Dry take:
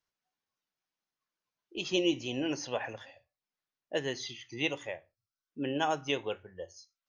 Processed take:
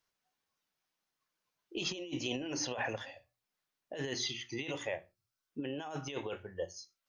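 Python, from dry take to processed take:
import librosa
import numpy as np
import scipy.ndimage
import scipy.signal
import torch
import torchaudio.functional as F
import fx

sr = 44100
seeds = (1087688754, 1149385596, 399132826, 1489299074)

y = fx.hum_notches(x, sr, base_hz=60, count=6)
y = fx.over_compress(y, sr, threshold_db=-38.0, ratio=-1.0)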